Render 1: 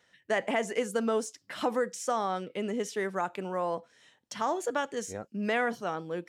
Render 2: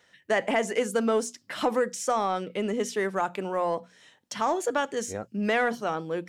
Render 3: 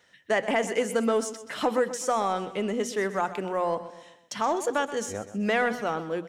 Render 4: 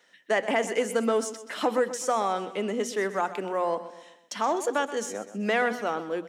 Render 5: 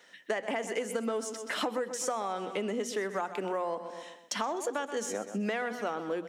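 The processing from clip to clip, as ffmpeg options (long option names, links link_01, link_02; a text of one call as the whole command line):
ffmpeg -i in.wav -filter_complex "[0:a]bandreject=frequency=60:width_type=h:width=6,bandreject=frequency=120:width_type=h:width=6,bandreject=frequency=180:width_type=h:width=6,bandreject=frequency=240:width_type=h:width=6,asplit=2[link_01][link_02];[link_02]asoftclip=type=tanh:threshold=-24.5dB,volume=-5.5dB[link_03];[link_01][link_03]amix=inputs=2:normalize=0,volume=1dB" out.wav
ffmpeg -i in.wav -af "aecho=1:1:127|254|381|508:0.211|0.093|0.0409|0.018" out.wav
ffmpeg -i in.wav -af "highpass=frequency=200:width=0.5412,highpass=frequency=200:width=1.3066" out.wav
ffmpeg -i in.wav -af "acompressor=threshold=-34dB:ratio=6,volume=4dB" out.wav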